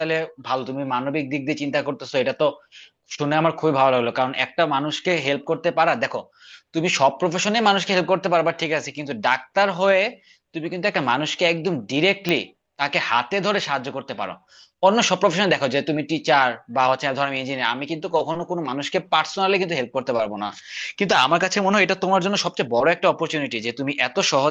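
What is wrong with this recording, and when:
12.29 s: pop -7 dBFS

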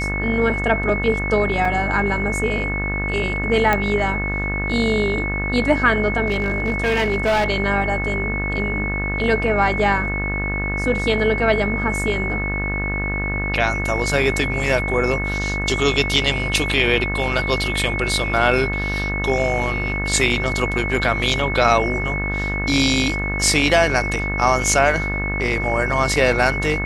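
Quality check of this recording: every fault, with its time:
buzz 50 Hz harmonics 37 -25 dBFS
whine 2.2 kHz -24 dBFS
1.65 s: dropout 3.5 ms
3.73 s: pop -5 dBFS
6.26–7.48 s: clipped -14.5 dBFS

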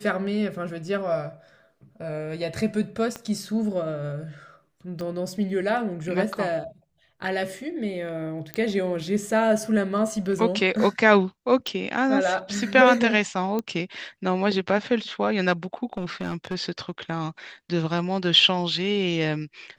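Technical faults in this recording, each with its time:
3.16 s: pop -18 dBFS
5.01 s: pop -22 dBFS
8.54 s: pop -13 dBFS
11.67 s: pop
13.59 s: pop -15 dBFS
15.93–16.55 s: clipped -23.5 dBFS

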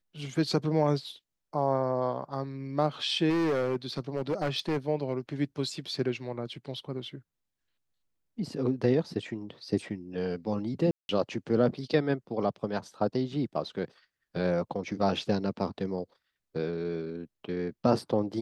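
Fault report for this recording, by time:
3.29–4.77 s: clipped -24 dBFS
10.91–11.09 s: dropout 181 ms

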